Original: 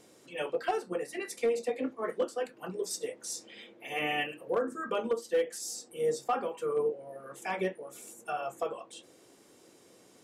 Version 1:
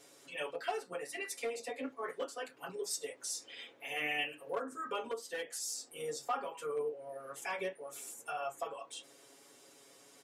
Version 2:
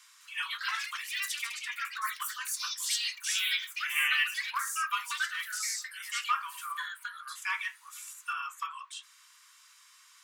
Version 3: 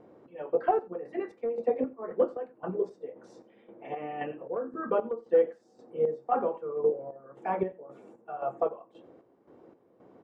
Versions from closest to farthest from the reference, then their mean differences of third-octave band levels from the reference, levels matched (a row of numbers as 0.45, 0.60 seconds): 1, 3, 2; 4.5, 8.0, 16.5 decibels